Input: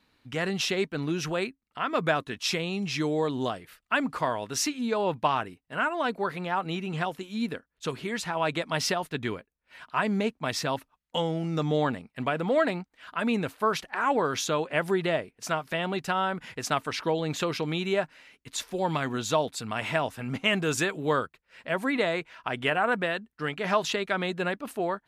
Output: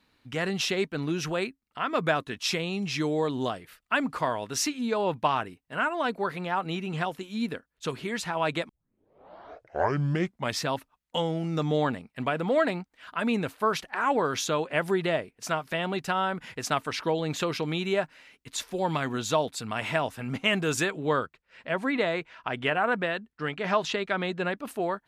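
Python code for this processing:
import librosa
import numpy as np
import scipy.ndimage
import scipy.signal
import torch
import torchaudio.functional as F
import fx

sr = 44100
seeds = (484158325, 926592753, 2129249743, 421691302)

y = fx.air_absorb(x, sr, metres=57.0, at=(20.9, 24.58))
y = fx.edit(y, sr, fx.tape_start(start_s=8.69, length_s=1.91), tone=tone)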